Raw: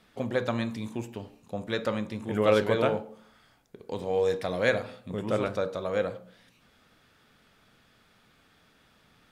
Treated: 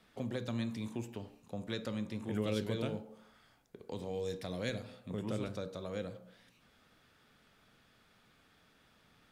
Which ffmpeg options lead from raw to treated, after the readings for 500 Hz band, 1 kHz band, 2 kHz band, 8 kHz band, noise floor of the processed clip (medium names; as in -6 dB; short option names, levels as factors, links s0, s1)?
-13.0 dB, -15.0 dB, -14.0 dB, no reading, -68 dBFS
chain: -filter_complex "[0:a]acrossover=split=330|3000[s0][s1][s2];[s1]acompressor=threshold=0.0112:ratio=6[s3];[s0][s3][s2]amix=inputs=3:normalize=0,volume=0.596"